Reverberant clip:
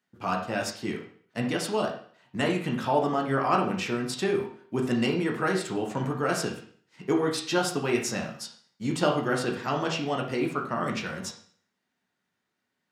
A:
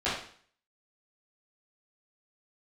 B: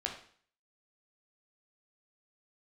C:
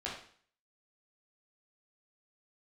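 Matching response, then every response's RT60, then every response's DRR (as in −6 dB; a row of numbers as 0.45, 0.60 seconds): B; 0.50, 0.50, 0.50 seconds; −13.5, 0.0, −6.5 decibels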